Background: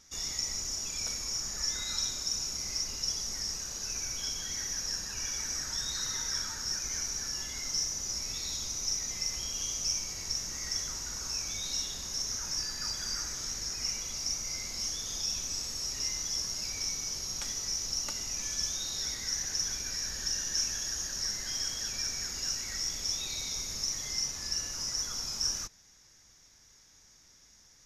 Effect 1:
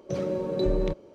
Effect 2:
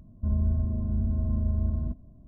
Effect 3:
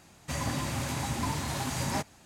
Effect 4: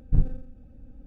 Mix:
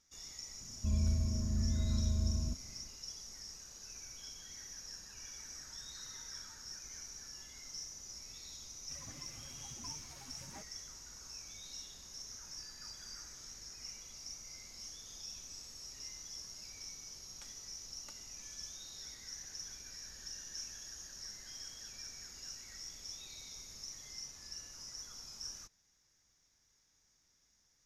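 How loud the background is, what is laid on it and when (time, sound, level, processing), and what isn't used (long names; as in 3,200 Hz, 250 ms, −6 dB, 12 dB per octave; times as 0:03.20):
background −14 dB
0:00.61: mix in 2 −6.5 dB
0:08.61: mix in 3 −17.5 dB + spectral dynamics exaggerated over time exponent 2
not used: 1, 4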